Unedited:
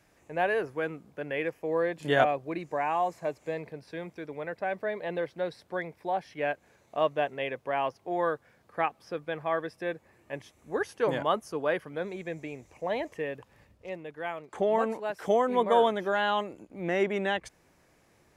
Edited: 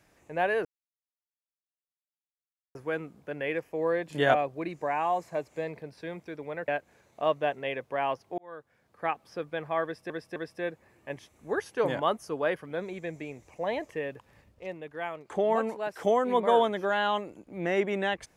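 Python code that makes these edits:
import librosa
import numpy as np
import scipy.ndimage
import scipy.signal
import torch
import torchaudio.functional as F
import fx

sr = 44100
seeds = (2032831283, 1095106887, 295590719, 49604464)

y = fx.edit(x, sr, fx.insert_silence(at_s=0.65, length_s=2.1),
    fx.cut(start_s=4.58, length_s=1.85),
    fx.fade_in_span(start_s=8.13, length_s=0.85),
    fx.repeat(start_s=9.59, length_s=0.26, count=3), tone=tone)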